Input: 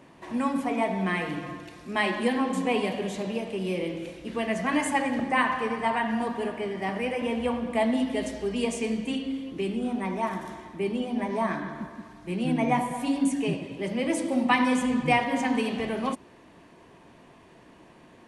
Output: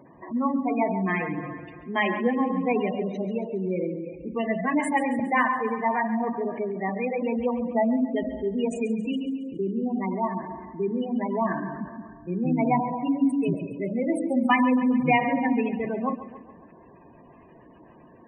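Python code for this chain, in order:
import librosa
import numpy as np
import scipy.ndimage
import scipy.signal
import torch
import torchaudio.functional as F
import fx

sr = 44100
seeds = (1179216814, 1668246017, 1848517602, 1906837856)

p1 = fx.spec_gate(x, sr, threshold_db=-15, keep='strong')
p2 = p1 + fx.echo_feedback(p1, sr, ms=138, feedback_pct=56, wet_db=-14.0, dry=0)
y = F.gain(torch.from_numpy(p2), 2.0).numpy()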